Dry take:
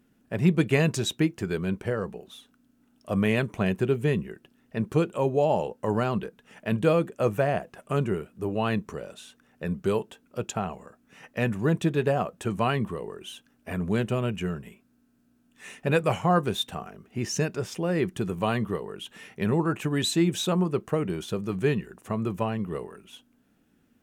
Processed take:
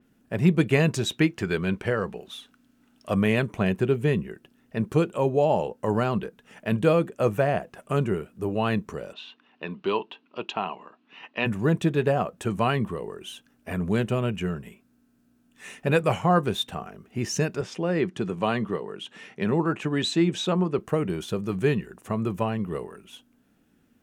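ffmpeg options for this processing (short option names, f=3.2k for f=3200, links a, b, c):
-filter_complex "[0:a]asettb=1/sr,asplit=3[a][b][c];[a]atrim=end=1.114[d];[b]atrim=start=1.11:end=3.15,asetpts=PTS-STARTPTS,afade=t=in:d=0.004:c=qsin,afade=t=out:st=2.036:d=0.004:c=qsin,equalizer=f=2.6k:t=o:w=2.9:g=6[e];[c]atrim=start=3.146[f];[d][e]acrossfade=d=0.004:c1=hsin:c2=qsin[g];[g][f]acrossfade=d=0.004:c1=qsin:c2=hsin,asplit=3[h][i][j];[h]afade=t=out:st=9.12:d=0.02[k];[i]highpass=290,equalizer=f=310:t=q:w=4:g=3,equalizer=f=520:t=q:w=4:g=-7,equalizer=f=1k:t=q:w=4:g=8,equalizer=f=1.5k:t=q:w=4:g=-3,equalizer=f=2.8k:t=q:w=4:g=9,equalizer=f=4k:t=q:w=4:g=5,lowpass=f=4.3k:w=0.5412,lowpass=f=4.3k:w=1.3066,afade=t=in:st=9.12:d=0.02,afade=t=out:st=11.45:d=0.02[l];[j]afade=t=in:st=11.45:d=0.02[m];[k][l][m]amix=inputs=3:normalize=0,asettb=1/sr,asplit=3[n][o][p];[n]atrim=end=17.614[q];[o]atrim=start=17.61:end=20.79,asetpts=PTS-STARTPTS,afade=t=in:d=0.004:c=qsin,afade=t=out:st=3.176:d=0.004:c=qsin,highpass=140,lowpass=6.7k[r];[p]atrim=start=20.786[s];[q][r]acrossfade=d=0.004:c1=hsin:c2=qsin[t];[t][s]acrossfade=d=0.004:c1=qsin:c2=hsin,adynamicequalizer=threshold=0.00501:dfrequency=4900:dqfactor=0.7:tfrequency=4900:tqfactor=0.7:attack=5:release=100:ratio=0.375:range=2:mode=cutabove:tftype=highshelf,volume=1.5dB"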